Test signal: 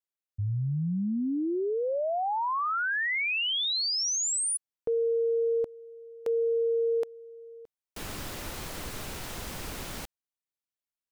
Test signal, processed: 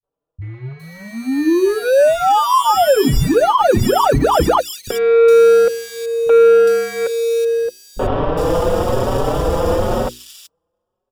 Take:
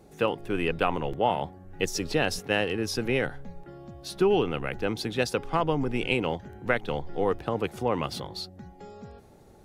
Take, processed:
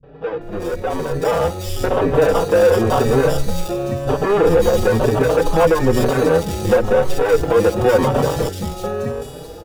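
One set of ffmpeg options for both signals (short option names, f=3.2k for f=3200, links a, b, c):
-filter_complex "[0:a]acrusher=samples=21:mix=1:aa=0.000001,equalizer=f=125:t=o:w=0.33:g=4,equalizer=f=500:t=o:w=0.33:g=11,equalizer=f=1.6k:t=o:w=0.33:g=-6,equalizer=f=2.5k:t=o:w=0.33:g=-5,aresample=32000,aresample=44100,asoftclip=type=tanh:threshold=-24.5dB,acrusher=bits=6:mode=log:mix=0:aa=0.000001,acompressor=threshold=-34dB:ratio=3:release=50,bandreject=f=60:t=h:w=6,bandreject=f=120:t=h:w=6,bandreject=f=180:t=h:w=6,bandreject=f=240:t=h:w=6,bandreject=f=300:t=h:w=6,bandreject=f=360:t=h:w=6,bandreject=f=420:t=h:w=6,acrossover=split=180|3200[a][b][c];[b]adelay=30[d];[c]adelay=410[e];[a][d][e]amix=inputs=3:normalize=0,dynaudnorm=f=550:g=5:m=12dB,highshelf=f=3.6k:g=-7,alimiter=level_in=14dB:limit=-1dB:release=50:level=0:latency=1,asplit=2[f][g];[g]adelay=4.8,afreqshift=0.98[h];[f][h]amix=inputs=2:normalize=1,volume=-1.5dB"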